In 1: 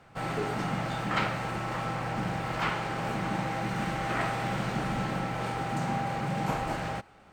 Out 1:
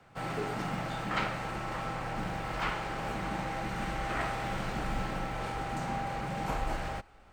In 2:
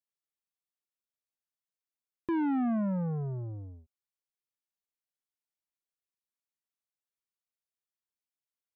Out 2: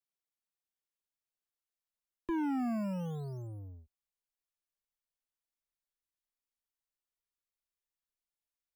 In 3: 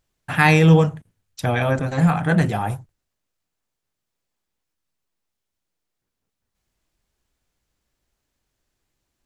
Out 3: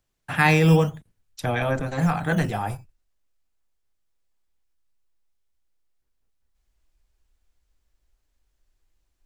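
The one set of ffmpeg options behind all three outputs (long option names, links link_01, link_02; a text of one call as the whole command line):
ffmpeg -i in.wav -filter_complex "[0:a]asubboost=boost=7:cutoff=52,acrossover=split=180|1100|2100[link_01][link_02][link_03][link_04];[link_01]acrusher=samples=10:mix=1:aa=0.000001:lfo=1:lforange=16:lforate=0.46[link_05];[link_05][link_02][link_03][link_04]amix=inputs=4:normalize=0,volume=-3dB" out.wav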